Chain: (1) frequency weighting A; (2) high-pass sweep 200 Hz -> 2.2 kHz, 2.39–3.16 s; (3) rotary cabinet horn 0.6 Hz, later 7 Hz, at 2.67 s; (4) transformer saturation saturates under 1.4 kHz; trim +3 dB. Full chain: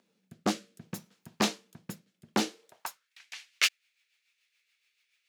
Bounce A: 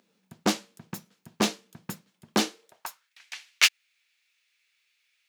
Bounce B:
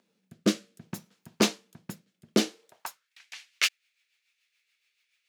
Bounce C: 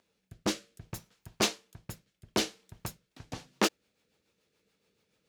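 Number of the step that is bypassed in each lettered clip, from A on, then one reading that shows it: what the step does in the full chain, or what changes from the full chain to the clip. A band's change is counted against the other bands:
3, 1 kHz band -2.0 dB; 4, crest factor change -3.0 dB; 2, loudness change -1.5 LU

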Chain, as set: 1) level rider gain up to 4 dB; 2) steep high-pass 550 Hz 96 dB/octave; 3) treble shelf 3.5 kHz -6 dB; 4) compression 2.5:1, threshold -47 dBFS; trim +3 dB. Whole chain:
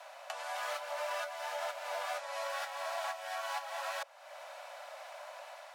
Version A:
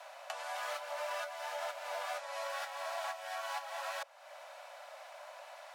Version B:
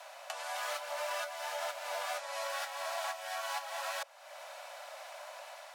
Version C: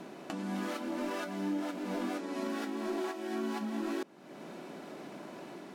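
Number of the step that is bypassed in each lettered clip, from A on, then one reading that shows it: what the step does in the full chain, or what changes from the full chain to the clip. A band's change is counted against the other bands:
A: 1, momentary loudness spread change +1 LU; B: 3, 8 kHz band +4.0 dB; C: 2, 500 Hz band +5.5 dB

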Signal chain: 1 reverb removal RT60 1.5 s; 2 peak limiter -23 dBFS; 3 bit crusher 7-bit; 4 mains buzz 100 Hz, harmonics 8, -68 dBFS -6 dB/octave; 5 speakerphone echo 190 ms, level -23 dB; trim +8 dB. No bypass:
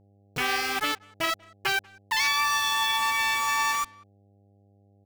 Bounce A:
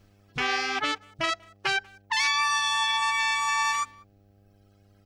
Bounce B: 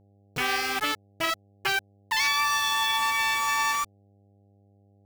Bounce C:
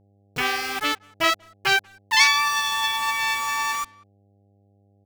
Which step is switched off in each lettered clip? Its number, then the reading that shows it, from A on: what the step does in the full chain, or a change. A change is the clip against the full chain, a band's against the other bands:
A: 3, distortion -13 dB; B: 5, echo-to-direct -29.0 dB to none; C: 2, mean gain reduction 2.0 dB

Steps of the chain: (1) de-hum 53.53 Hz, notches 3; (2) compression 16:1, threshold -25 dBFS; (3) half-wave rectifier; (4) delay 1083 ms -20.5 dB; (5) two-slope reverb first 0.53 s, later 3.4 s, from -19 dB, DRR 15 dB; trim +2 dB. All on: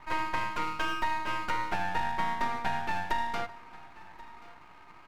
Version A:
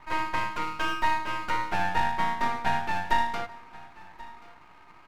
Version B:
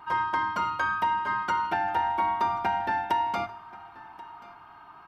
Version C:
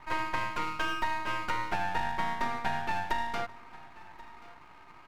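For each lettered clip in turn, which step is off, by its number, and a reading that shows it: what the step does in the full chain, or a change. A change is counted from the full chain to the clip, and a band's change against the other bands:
2, mean gain reduction 1.5 dB; 3, crest factor change -2.0 dB; 5, echo-to-direct -14.0 dB to -20.5 dB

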